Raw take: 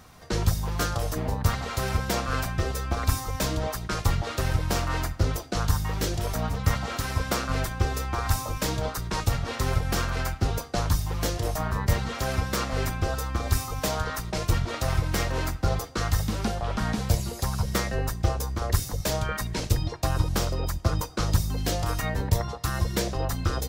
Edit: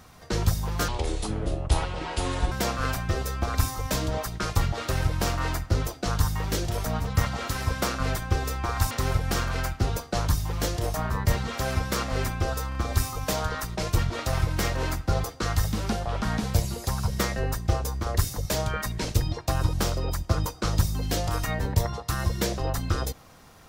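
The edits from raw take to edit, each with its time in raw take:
0:00.88–0:02.01: play speed 69%
0:08.40–0:09.52: remove
0:13.30: stutter 0.03 s, 3 plays

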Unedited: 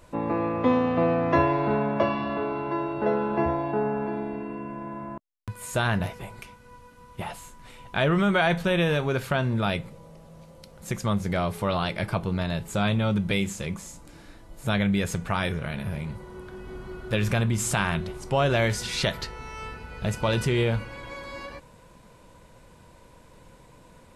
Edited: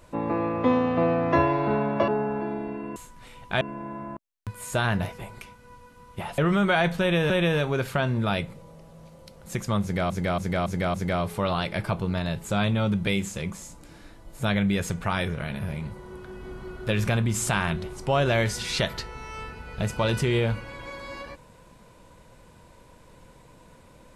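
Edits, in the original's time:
0:02.08–0:03.74: remove
0:07.39–0:08.04: move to 0:04.62
0:08.66–0:08.96: repeat, 2 plays
0:11.18–0:11.46: repeat, 5 plays

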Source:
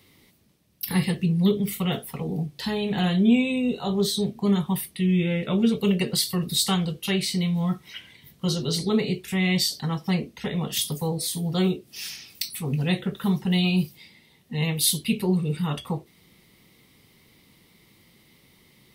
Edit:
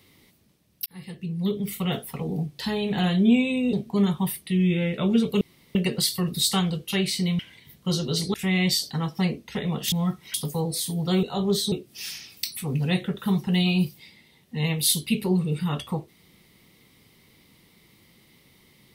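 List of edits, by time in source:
0:00.86–0:01.99: fade in
0:03.73–0:04.22: move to 0:11.70
0:05.90: splice in room tone 0.34 s
0:07.54–0:07.96: move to 0:10.81
0:08.91–0:09.23: remove

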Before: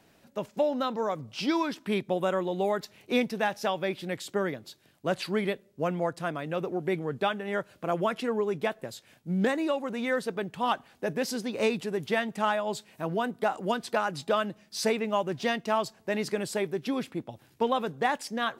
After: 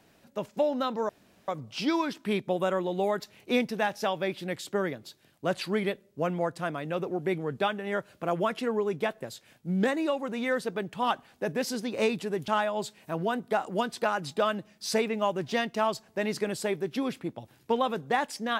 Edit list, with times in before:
0:01.09: splice in room tone 0.39 s
0:12.09–0:12.39: remove

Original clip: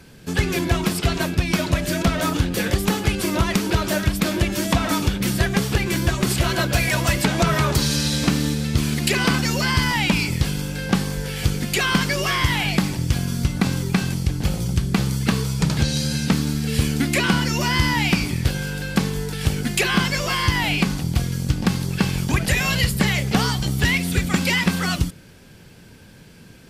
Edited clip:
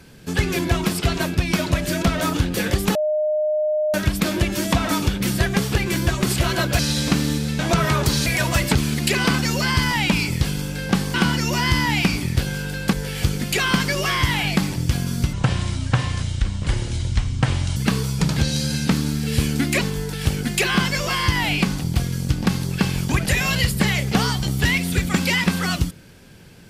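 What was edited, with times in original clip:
0:02.95–0:03.94: beep over 611 Hz −17.5 dBFS
0:06.79–0:07.28: swap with 0:07.95–0:08.75
0:13.54–0:15.17: play speed 67%
0:17.22–0:19.01: move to 0:11.14

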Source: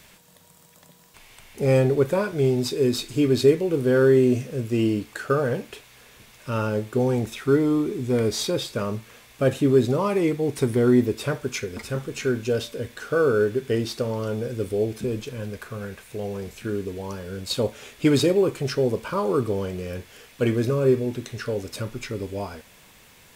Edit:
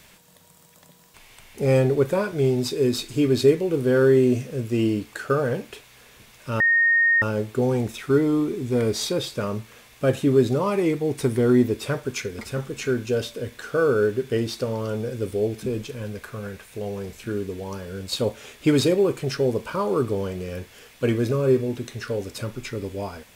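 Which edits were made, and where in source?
0:06.60: insert tone 1,850 Hz −15 dBFS 0.62 s

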